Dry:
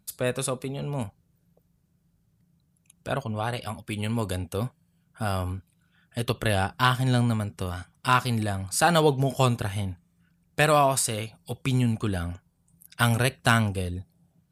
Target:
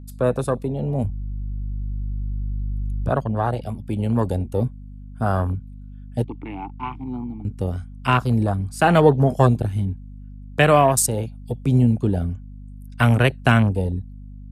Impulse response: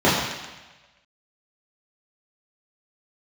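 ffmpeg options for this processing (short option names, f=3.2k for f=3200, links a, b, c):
-filter_complex "[0:a]afwtdn=0.0316,asettb=1/sr,asplit=3[a][b][c];[a]atrim=end=6.244[d];[b]atrim=start=6.24:end=7.45,asetpts=PTS-STARTPTS,afade=t=in:d=0.004:c=qsin,afade=t=out:st=1.206:d=0.004:c=qsin,asplit=3[e][f][g];[e]bandpass=f=300:t=q:w=8,volume=0dB[h];[f]bandpass=f=870:t=q:w=8,volume=-6dB[i];[g]bandpass=f=2.24k:t=q:w=8,volume=-9dB[j];[h][i][j]amix=inputs=3:normalize=0[k];[c]atrim=start=7.446[l];[d][k]acrossfade=d=0.004:c1=hsin:c2=qsin[m];[m][l]acrossfade=d=0.004:c1=qsin:c2=hsin,acrossover=split=320|700|2200[n][o][p][q];[p]alimiter=limit=-21dB:level=0:latency=1:release=256[r];[n][o][r][q]amix=inputs=4:normalize=0,aeval=exprs='val(0)+0.00631*(sin(2*PI*50*n/s)+sin(2*PI*2*50*n/s)/2+sin(2*PI*3*50*n/s)/3+sin(2*PI*4*50*n/s)/4+sin(2*PI*5*50*n/s)/5)':c=same,asplit=3[s][t][u];[s]afade=t=out:st=1.03:d=0.02[v];[t]asubboost=boost=7:cutoff=180,afade=t=in:st=1.03:d=0.02,afade=t=out:st=3.08:d=0.02[w];[u]afade=t=in:st=3.08:d=0.02[x];[v][w][x]amix=inputs=3:normalize=0,volume=7.5dB"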